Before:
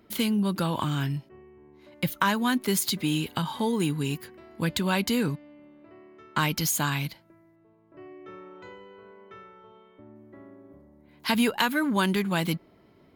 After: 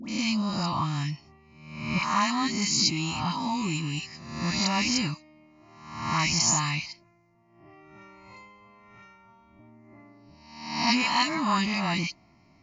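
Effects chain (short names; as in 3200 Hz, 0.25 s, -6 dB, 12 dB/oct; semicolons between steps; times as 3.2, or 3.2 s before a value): spectral swells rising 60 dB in 0.86 s; high shelf 5600 Hz +12 dB; fixed phaser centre 2200 Hz, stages 8; dispersion highs, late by 94 ms, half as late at 1200 Hz; speed mistake 24 fps film run at 25 fps; WMA 64 kbps 16000 Hz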